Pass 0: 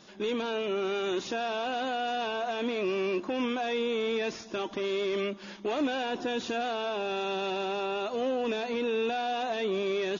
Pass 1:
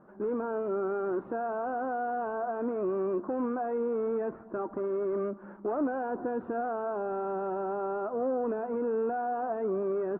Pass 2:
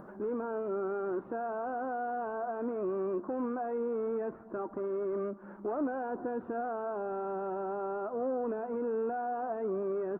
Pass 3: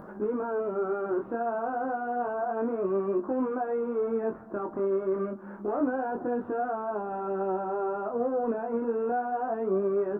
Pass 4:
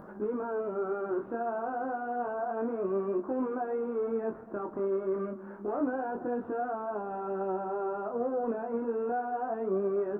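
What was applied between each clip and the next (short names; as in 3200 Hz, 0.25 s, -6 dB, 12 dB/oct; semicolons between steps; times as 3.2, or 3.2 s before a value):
elliptic low-pass 1400 Hz, stop band 80 dB
upward compressor, threshold -37 dBFS; gain -3 dB
chorus 0.29 Hz, delay 19 ms, depth 7.2 ms; gain +8 dB
warbling echo 0.113 s, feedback 79%, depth 89 cents, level -22.5 dB; gain -3 dB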